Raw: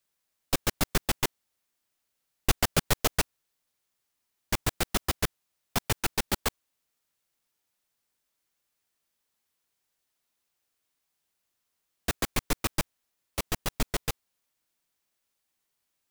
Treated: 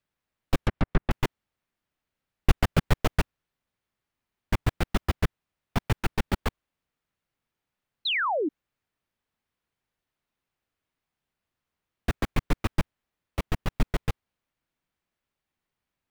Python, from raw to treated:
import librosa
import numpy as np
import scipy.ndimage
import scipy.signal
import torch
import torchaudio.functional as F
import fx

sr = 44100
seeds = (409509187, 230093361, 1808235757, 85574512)

y = fx.env_lowpass_down(x, sr, base_hz=1800.0, full_db=-23.5, at=(0.62, 1.11))
y = fx.bass_treble(y, sr, bass_db=7, treble_db=-14)
y = fx.spec_paint(y, sr, seeds[0], shape='fall', start_s=8.05, length_s=0.44, low_hz=270.0, high_hz=4300.0, level_db=-26.0)